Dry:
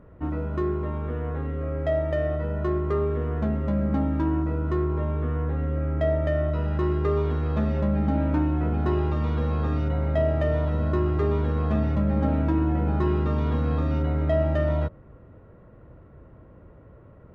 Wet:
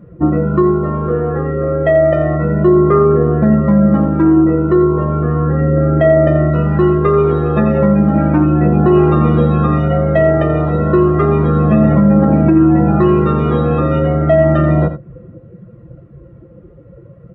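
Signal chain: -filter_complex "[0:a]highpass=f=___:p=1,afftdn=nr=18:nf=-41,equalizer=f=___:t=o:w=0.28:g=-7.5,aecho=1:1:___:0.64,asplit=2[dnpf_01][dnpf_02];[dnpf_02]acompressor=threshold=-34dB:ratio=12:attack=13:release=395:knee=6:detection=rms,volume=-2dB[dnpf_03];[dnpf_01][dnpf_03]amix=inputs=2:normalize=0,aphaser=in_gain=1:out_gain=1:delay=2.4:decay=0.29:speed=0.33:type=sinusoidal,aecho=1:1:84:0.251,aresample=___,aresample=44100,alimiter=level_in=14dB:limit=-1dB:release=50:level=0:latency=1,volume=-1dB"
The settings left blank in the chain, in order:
130, 910, 5.8, 22050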